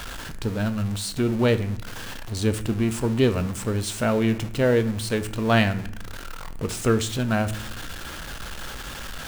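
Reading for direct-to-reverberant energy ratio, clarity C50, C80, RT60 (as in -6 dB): 9.5 dB, 14.5 dB, 18.0 dB, 0.65 s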